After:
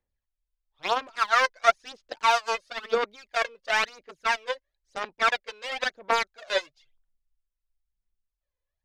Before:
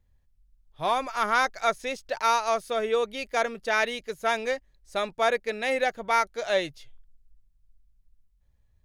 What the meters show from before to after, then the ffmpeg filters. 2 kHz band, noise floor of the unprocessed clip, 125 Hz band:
+1.5 dB, −66 dBFS, can't be measured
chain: -filter_complex "[0:a]aeval=exprs='0.335*(cos(1*acos(clip(val(0)/0.335,-1,1)))-cos(1*PI/2))+0.0596*(cos(7*acos(clip(val(0)/0.335,-1,1)))-cos(7*PI/2))':channel_layout=same,acrossover=split=290 6500:gain=0.141 1 0.0708[link_01][link_02][link_03];[link_01][link_02][link_03]amix=inputs=3:normalize=0,aphaser=in_gain=1:out_gain=1:delay=2:decay=0.67:speed=0.99:type=sinusoidal"

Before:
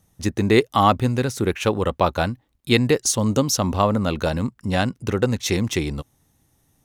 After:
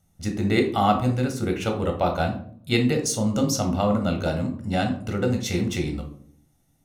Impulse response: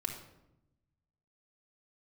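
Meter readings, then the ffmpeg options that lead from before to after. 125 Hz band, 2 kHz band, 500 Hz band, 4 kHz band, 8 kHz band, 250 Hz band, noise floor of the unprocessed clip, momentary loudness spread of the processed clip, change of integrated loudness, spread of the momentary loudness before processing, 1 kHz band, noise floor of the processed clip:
−2.5 dB, −4.0 dB, −4.0 dB, −4.5 dB, −5.0 dB, −1.5 dB, −65 dBFS, 7 LU, −3.0 dB, 8 LU, −3.5 dB, −64 dBFS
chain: -filter_complex "[1:a]atrim=start_sample=2205,asetrate=88200,aresample=44100[link_01];[0:a][link_01]afir=irnorm=-1:irlink=0"

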